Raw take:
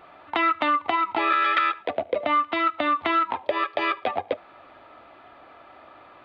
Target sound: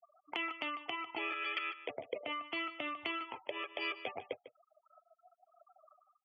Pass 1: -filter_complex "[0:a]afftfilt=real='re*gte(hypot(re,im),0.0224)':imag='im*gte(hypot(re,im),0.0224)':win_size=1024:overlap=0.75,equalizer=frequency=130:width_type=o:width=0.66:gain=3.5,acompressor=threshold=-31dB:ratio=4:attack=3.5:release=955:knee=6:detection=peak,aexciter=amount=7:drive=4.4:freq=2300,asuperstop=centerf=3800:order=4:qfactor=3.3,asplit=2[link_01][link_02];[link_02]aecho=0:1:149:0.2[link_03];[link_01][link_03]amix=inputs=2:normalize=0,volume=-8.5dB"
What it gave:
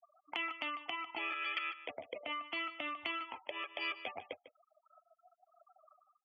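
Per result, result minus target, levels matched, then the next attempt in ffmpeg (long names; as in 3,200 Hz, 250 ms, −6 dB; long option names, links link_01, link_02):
125 Hz band −4.5 dB; 500 Hz band −3.5 dB
-filter_complex "[0:a]afftfilt=real='re*gte(hypot(re,im),0.0224)':imag='im*gte(hypot(re,im),0.0224)':win_size=1024:overlap=0.75,equalizer=frequency=130:width_type=o:width=0.66:gain=11.5,acompressor=threshold=-31dB:ratio=4:attack=3.5:release=955:knee=6:detection=peak,aexciter=amount=7:drive=4.4:freq=2300,asuperstop=centerf=3800:order=4:qfactor=3.3,asplit=2[link_01][link_02];[link_02]aecho=0:1:149:0.2[link_03];[link_01][link_03]amix=inputs=2:normalize=0,volume=-8.5dB"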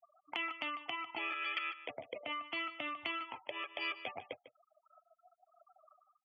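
500 Hz band −3.5 dB
-filter_complex "[0:a]afftfilt=real='re*gte(hypot(re,im),0.0224)':imag='im*gte(hypot(re,im),0.0224)':win_size=1024:overlap=0.75,equalizer=frequency=130:width_type=o:width=0.66:gain=11.5,acompressor=threshold=-31dB:ratio=4:attack=3.5:release=955:knee=6:detection=peak,aexciter=amount=7:drive=4.4:freq=2300,asuperstop=centerf=3800:order=4:qfactor=3.3,equalizer=frequency=420:width_type=o:width=0.67:gain=8.5,asplit=2[link_01][link_02];[link_02]aecho=0:1:149:0.2[link_03];[link_01][link_03]amix=inputs=2:normalize=0,volume=-8.5dB"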